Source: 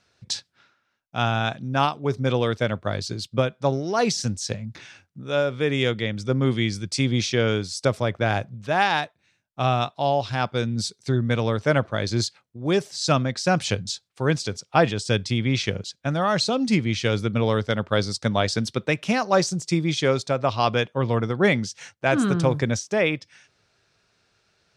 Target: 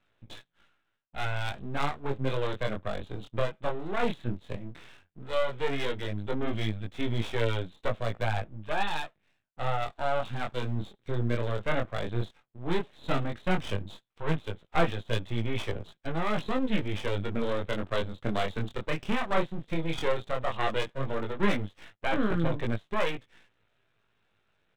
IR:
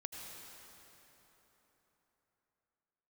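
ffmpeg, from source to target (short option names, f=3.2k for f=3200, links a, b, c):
-af "aresample=8000,aeval=exprs='max(val(0),0)':c=same,aresample=44100,flanger=delay=17.5:depth=7.7:speed=0.13,aeval=exprs='abs(val(0))':c=same,volume=1dB"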